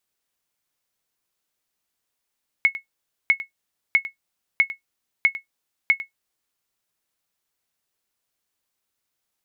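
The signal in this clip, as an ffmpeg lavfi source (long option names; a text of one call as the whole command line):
ffmpeg -f lavfi -i "aevalsrc='0.422*(sin(2*PI*2190*mod(t,0.65))*exp(-6.91*mod(t,0.65)/0.12)+0.178*sin(2*PI*2190*max(mod(t,0.65)-0.1,0))*exp(-6.91*max(mod(t,0.65)-0.1,0)/0.12))':duration=3.9:sample_rate=44100" out.wav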